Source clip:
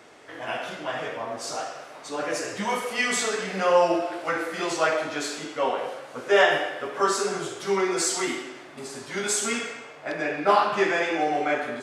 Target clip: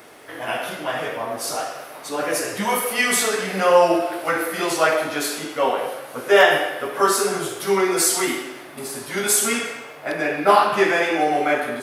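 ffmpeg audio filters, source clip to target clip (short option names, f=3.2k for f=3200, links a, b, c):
-af "aexciter=amount=9.4:drive=3.5:freq=10k,volume=5dB"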